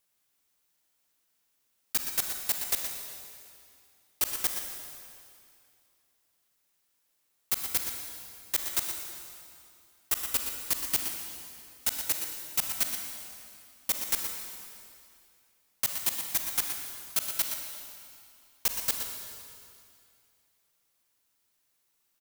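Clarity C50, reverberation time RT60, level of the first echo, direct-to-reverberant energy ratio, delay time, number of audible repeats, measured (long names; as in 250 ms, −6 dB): 2.5 dB, 2.5 s, −8.5 dB, 2.0 dB, 120 ms, 1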